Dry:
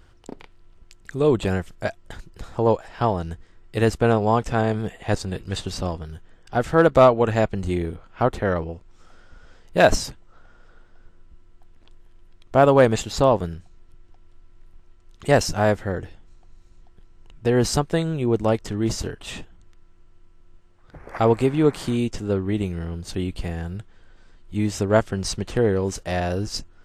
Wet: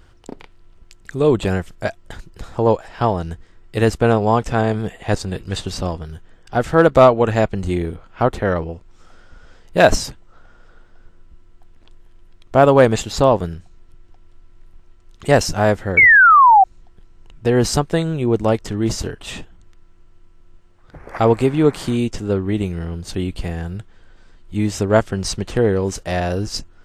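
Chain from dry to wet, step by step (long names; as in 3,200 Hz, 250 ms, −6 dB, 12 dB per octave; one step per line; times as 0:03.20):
sound drawn into the spectrogram fall, 0:15.97–0:16.64, 740–2,300 Hz −12 dBFS
level +3.5 dB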